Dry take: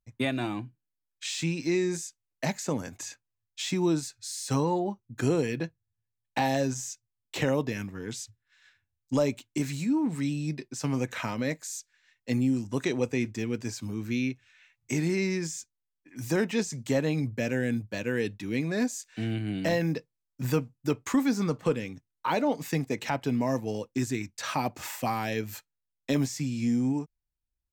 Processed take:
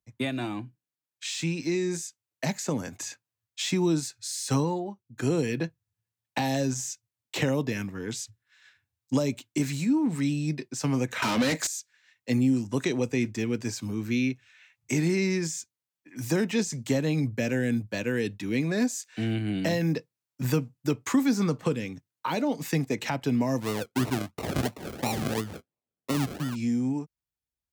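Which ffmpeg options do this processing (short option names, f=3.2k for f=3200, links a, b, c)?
-filter_complex "[0:a]asettb=1/sr,asplit=3[a][b][c];[a]atrim=end=11.224[d];[b]atrim=start=11.22:end=11.67,asetpts=PTS-STARTPTS,afade=t=in:d=0.004:c=qsin,afade=t=out:st=0.446:d=0.004:c=qsin,asplit=2[e][f];[f]highpass=f=720:p=1,volume=30dB,asoftclip=type=tanh:threshold=-16dB[g];[e][g]amix=inputs=2:normalize=0,lowpass=f=3.5k:p=1,volume=-6dB[h];[c]atrim=start=11.666[i];[d][h]acrossfade=d=0.004:c1=hsin:c2=qsin[j];[j][i]acrossfade=d=0.004:c1=qsin:c2=hsin,asplit=3[k][l][m];[k]afade=t=out:st=23.6:d=0.02[n];[l]acrusher=samples=38:mix=1:aa=0.000001:lfo=1:lforange=22.8:lforate=2.9,afade=t=in:st=23.6:d=0.02,afade=t=out:st=26.54:d=0.02[o];[m]afade=t=in:st=26.54:d=0.02[p];[n][o][p]amix=inputs=3:normalize=0,asplit=3[q][r][s];[q]atrim=end=4.87,asetpts=PTS-STARTPTS,afade=t=out:st=4.61:d=0.26:silence=0.398107[t];[r]atrim=start=4.87:end=5.12,asetpts=PTS-STARTPTS,volume=-8dB[u];[s]atrim=start=5.12,asetpts=PTS-STARTPTS,afade=t=in:d=0.26:silence=0.398107[v];[t][u][v]concat=n=3:v=0:a=1,acrossover=split=310|3000[w][x][y];[x]acompressor=threshold=-31dB:ratio=6[z];[w][z][y]amix=inputs=3:normalize=0,highpass=84,dynaudnorm=f=210:g=21:m=3dB"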